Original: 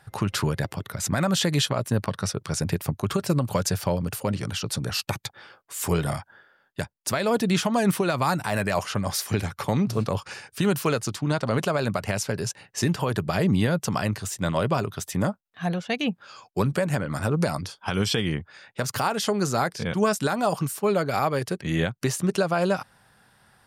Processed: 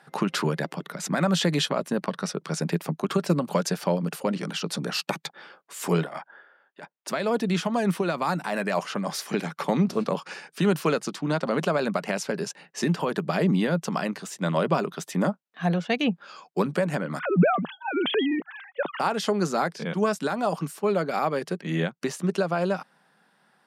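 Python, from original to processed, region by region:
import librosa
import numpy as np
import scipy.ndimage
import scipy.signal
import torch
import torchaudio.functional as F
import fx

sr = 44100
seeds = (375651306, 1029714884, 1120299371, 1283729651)

y = fx.chain(x, sr, fx.bass_treble(bass_db=-15, treble_db=-12),
    fx.over_compress(threshold_db=-35.0, ratio=-0.5), at=(6.02, 7.08))
y = fx.chain(y, sr, fx.sine_speech(),
    fx.transient(attack_db=2, sustain_db=10), at=(17.19, 19.0))
y = scipy.signal.sosfilt(scipy.signal.ellip(4, 1.0, 40, 160.0, 'highpass', fs=sr, output='sos'), y)
y = fx.rider(y, sr, range_db=10, speed_s=2.0)
y = fx.high_shelf(y, sr, hz=7200.0, db=-11.0)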